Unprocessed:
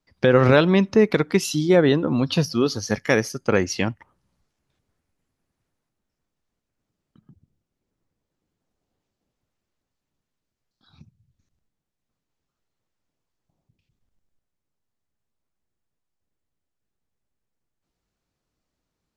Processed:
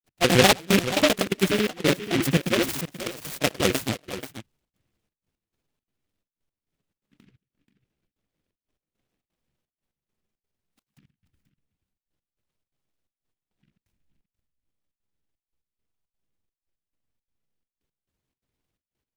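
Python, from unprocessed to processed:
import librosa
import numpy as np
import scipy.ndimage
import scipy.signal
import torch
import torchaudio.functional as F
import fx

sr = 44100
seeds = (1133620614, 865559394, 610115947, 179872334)

y = fx.pitch_trill(x, sr, semitones=5.5, every_ms=74)
y = fx.granulator(y, sr, seeds[0], grain_ms=100.0, per_s=20.0, spray_ms=100.0, spread_st=0)
y = fx.step_gate(y, sr, bpm=171, pattern='x.xxxx..x..xx', floor_db=-24.0, edge_ms=4.5)
y = y + 10.0 ** (-12.0 / 20.0) * np.pad(y, (int(483 * sr / 1000.0), 0))[:len(y)]
y = fx.noise_mod_delay(y, sr, seeds[1], noise_hz=2200.0, depth_ms=0.19)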